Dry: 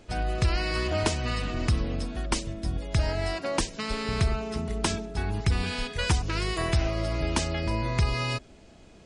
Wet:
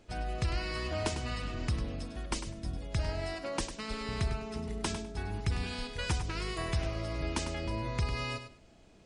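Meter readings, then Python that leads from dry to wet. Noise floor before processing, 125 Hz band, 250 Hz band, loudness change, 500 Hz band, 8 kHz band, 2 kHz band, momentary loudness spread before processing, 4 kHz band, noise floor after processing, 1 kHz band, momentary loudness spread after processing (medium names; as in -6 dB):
-52 dBFS, -7.0 dB, -7.0 dB, -7.0 dB, -7.0 dB, -7.0 dB, -7.0 dB, 5 LU, -7.0 dB, -58 dBFS, -7.0 dB, 5 LU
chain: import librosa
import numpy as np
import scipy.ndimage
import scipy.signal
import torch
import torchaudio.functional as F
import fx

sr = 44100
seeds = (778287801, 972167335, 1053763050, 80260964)

y = fx.echo_feedback(x, sr, ms=101, feedback_pct=20, wet_db=-10)
y = y * 10.0 ** (-7.5 / 20.0)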